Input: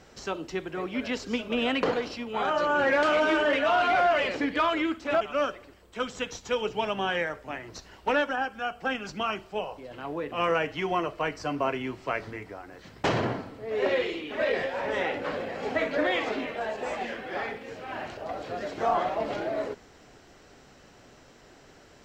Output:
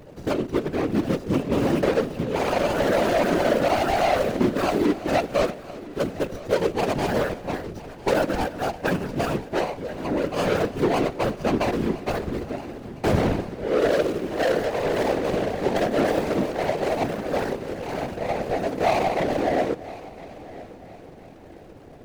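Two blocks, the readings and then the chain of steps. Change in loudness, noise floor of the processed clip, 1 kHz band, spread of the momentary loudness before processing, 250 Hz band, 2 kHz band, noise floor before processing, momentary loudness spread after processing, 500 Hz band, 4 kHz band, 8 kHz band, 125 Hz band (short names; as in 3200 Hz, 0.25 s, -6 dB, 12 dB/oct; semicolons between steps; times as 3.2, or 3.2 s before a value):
+4.5 dB, -44 dBFS, +2.5 dB, 13 LU, +8.0 dB, -1.0 dB, -54 dBFS, 10 LU, +6.0 dB, +0.5 dB, +7.5 dB, +12.0 dB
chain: median filter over 41 samples; in parallel at -2.5 dB: vocal rider within 4 dB 0.5 s; on the sum: hard clip -22.5 dBFS, distortion -14 dB; whisperiser; multi-head echo 0.337 s, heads first and third, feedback 48%, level -19.5 dB; gain +5.5 dB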